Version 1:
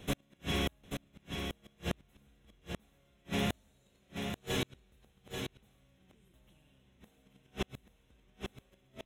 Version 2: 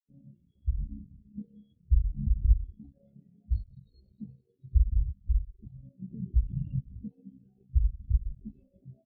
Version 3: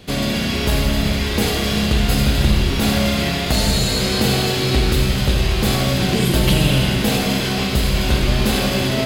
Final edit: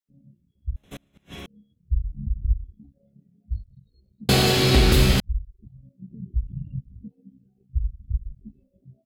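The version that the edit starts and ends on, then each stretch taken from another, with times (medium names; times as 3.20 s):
2
0.76–1.46 s: from 1
4.29–5.20 s: from 3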